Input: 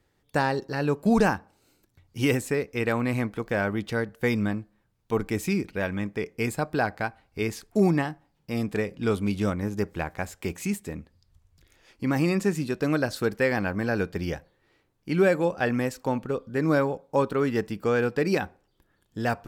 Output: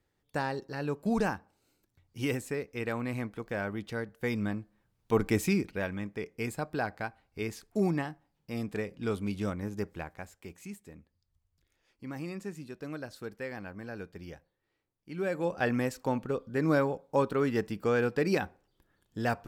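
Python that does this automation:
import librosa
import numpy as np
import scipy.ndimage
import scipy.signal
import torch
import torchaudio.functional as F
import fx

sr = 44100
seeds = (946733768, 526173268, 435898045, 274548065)

y = fx.gain(x, sr, db=fx.line((4.18, -8.0), (5.32, 1.0), (5.99, -7.0), (9.86, -7.0), (10.44, -15.0), (15.13, -15.0), (15.56, -3.5)))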